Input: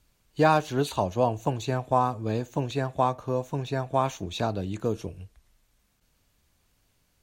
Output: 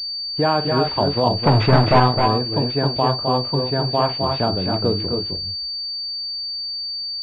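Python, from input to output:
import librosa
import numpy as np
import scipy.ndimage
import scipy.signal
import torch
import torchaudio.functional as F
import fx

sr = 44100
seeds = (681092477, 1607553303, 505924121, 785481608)

p1 = fx.leveller(x, sr, passes=5, at=(1.43, 2.0))
p2 = fx.over_compress(p1, sr, threshold_db=-24.0, ratio=-0.5)
p3 = p1 + (p2 * librosa.db_to_amplitude(-3.0))
p4 = fx.echo_multitap(p3, sr, ms=(48, 260, 281), db=(-12.5, -5.5, -7.0))
y = fx.pwm(p4, sr, carrier_hz=4600.0)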